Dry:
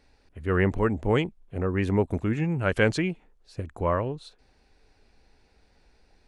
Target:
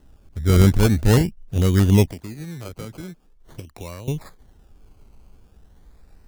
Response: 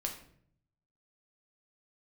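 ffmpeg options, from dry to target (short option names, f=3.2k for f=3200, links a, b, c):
-filter_complex "[0:a]acrusher=samples=19:mix=1:aa=0.000001:lfo=1:lforange=11.4:lforate=0.44,bass=f=250:g=11,treble=f=4k:g=4,asettb=1/sr,asplit=3[a][b][c];[a]atrim=end=2.074[d];[b]atrim=start=2.07:end=4.08,asetpts=PTS-STARTPTS,afade=t=in:d=0.004:c=qsin,afade=t=out:st=2.006:d=0.004:c=qsin,acrossover=split=250|3000[e][f][g];[e]acompressor=threshold=-43dB:ratio=4[h];[f]acompressor=threshold=-41dB:ratio=4[i];[g]acompressor=threshold=-49dB:ratio=4[j];[h][i][j]amix=inputs=3:normalize=0[k];[c]atrim=start=4.076[l];[d][k]acrossfade=d=0.004:c1=hsin:c2=qsin[m];[m][l]acrossfade=d=0.004:c1=qsin:c2=hsin,volume=2dB"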